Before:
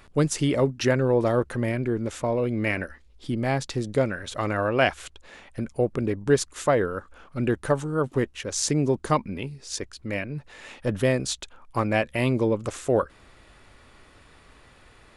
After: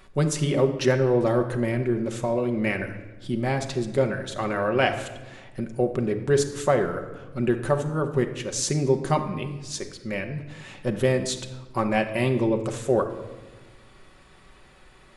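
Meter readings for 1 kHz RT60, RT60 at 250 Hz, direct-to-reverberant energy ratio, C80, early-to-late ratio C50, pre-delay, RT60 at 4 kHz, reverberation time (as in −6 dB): 1.1 s, 1.8 s, 5.0 dB, 12.0 dB, 9.5 dB, 5 ms, 0.85 s, 1.2 s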